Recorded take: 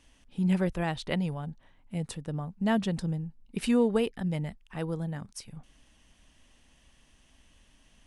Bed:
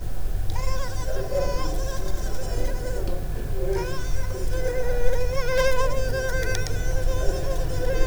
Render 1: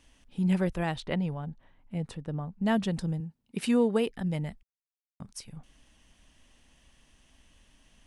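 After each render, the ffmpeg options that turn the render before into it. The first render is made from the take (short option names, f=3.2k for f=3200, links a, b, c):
-filter_complex "[0:a]asettb=1/sr,asplit=3[a][b][c];[a]atrim=end=1.004[d];[b]atrim=start=1:end=2.65,asetpts=PTS-STARTPTS,afade=t=in:d=0.004:c=qsin,afade=t=out:st=1.646:d=0.004:c=qsin,lowpass=f=2.6k:p=1[e];[c]atrim=start=2.646[f];[d][e]acrossfade=d=0.004:c1=hsin:c2=qsin[g];[g][f]acrossfade=d=0.004:c1=qsin:c2=hsin,asettb=1/sr,asplit=3[h][i][j];[h]atrim=end=3.204[k];[i]atrim=start=3.2:end=4.09,asetpts=PTS-STARTPTS,afade=t=in:d=0.004:c=qsin,afade=t=out:st=0.886:d=0.004:c=qsin,highpass=110[l];[j]atrim=start=4.086[m];[k][l]acrossfade=d=0.004:c1=hsin:c2=qsin[n];[n][m]acrossfade=d=0.004:c1=qsin:c2=hsin,asplit=3[o][p][q];[o]atrim=end=4.63,asetpts=PTS-STARTPTS,afade=t=out:st=4.626:d=0.004:c=hsin[r];[p]atrim=start=4.63:end=5.2,asetpts=PTS-STARTPTS,volume=0[s];[q]atrim=start=5.2,asetpts=PTS-STARTPTS,afade=t=in:d=0.004:c=hsin[t];[r][s][t]concat=n=3:v=0:a=1"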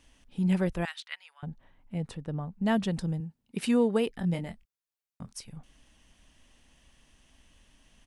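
-filter_complex "[0:a]asettb=1/sr,asplit=3[a][b][c];[a]atrim=end=0.854[d];[b]atrim=start=0.85:end=1.43,asetpts=PTS-STARTPTS,afade=t=in:d=0.004:c=qsin,afade=t=out:st=0.576:d=0.004:c=qsin,highpass=f=1.4k:w=0.5412,highpass=f=1.4k:w=1.3066[e];[c]atrim=start=1.426[f];[d][e]acrossfade=d=0.004:c1=hsin:c2=qsin[g];[g][f]acrossfade=d=0.004:c1=qsin:c2=hsin,asplit=3[h][i][j];[h]afade=t=out:st=4.22:d=0.02[k];[i]asplit=2[l][m];[m]adelay=23,volume=-6.5dB[n];[l][n]amix=inputs=2:normalize=0,afade=t=in:st=4.22:d=0.02,afade=t=out:st=5.32:d=0.02[o];[j]afade=t=in:st=5.32:d=0.02[p];[k][o][p]amix=inputs=3:normalize=0"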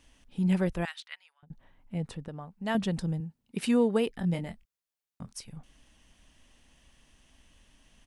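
-filter_complex "[0:a]asettb=1/sr,asplit=3[a][b][c];[a]atrim=end=2.284[d];[b]atrim=start=2.28:end=2.75,asetpts=PTS-STARTPTS,afade=t=in:d=0.004:c=qsin,afade=t=out:st=0.466:d=0.004:c=qsin,lowshelf=f=360:g=-11[e];[c]atrim=start=2.746[f];[d][e]acrossfade=d=0.004:c1=hsin:c2=qsin[g];[g][f]acrossfade=d=0.004:c1=qsin:c2=hsin,asplit=2[h][i];[h]atrim=end=1.5,asetpts=PTS-STARTPTS,afade=t=out:st=0.65:d=0.85:c=qsin[j];[i]atrim=start=1.5,asetpts=PTS-STARTPTS,afade=t=in:d=0.004:c=hsin[k];[j][k]concat=n=2:v=0:a=1"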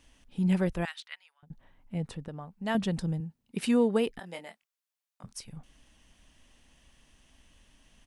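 -filter_complex "[0:a]asettb=1/sr,asplit=3[a][b][c];[a]atrim=end=4.194[d];[b]atrim=start=4.19:end=5.24,asetpts=PTS-STARTPTS,afade=t=in:d=0.004:c=qsin,afade=t=out:st=1.046:d=0.004:c=qsin,highpass=580[e];[c]atrim=start=5.236[f];[d][e]acrossfade=d=0.004:c1=hsin:c2=qsin[g];[g][f]acrossfade=d=0.004:c1=qsin:c2=hsin"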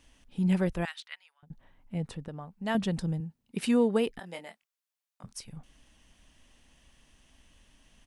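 -af anull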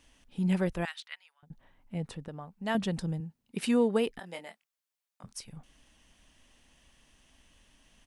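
-af "lowshelf=f=210:g=-3.5"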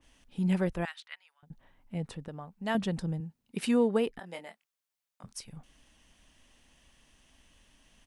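-af "adynamicequalizer=threshold=0.00316:dfrequency=2300:dqfactor=0.7:tfrequency=2300:tqfactor=0.7:attack=5:release=100:ratio=0.375:range=3.5:mode=cutabove:tftype=highshelf"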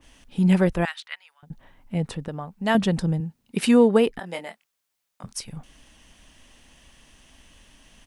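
-af "volume=9.5dB"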